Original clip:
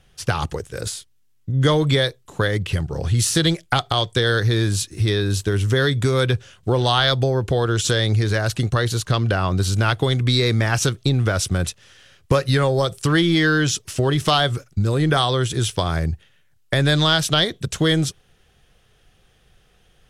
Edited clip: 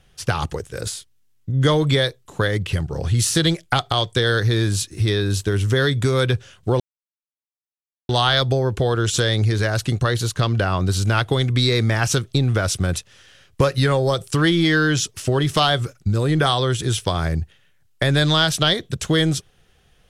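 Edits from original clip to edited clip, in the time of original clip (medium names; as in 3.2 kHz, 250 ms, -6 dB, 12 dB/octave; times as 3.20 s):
6.80 s: insert silence 1.29 s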